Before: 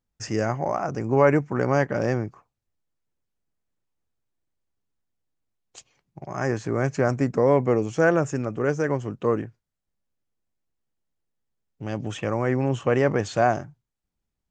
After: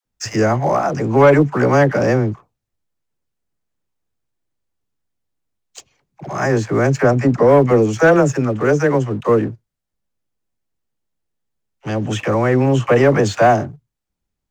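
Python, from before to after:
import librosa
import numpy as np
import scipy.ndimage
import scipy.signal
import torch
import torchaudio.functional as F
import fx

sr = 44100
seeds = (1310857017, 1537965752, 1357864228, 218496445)

y = fx.dispersion(x, sr, late='lows', ms=58.0, hz=540.0)
y = fx.leveller(y, sr, passes=1)
y = fx.high_shelf(y, sr, hz=4500.0, db=-6.0, at=(7.02, 7.49))
y = F.gain(torch.from_numpy(y), 5.5).numpy()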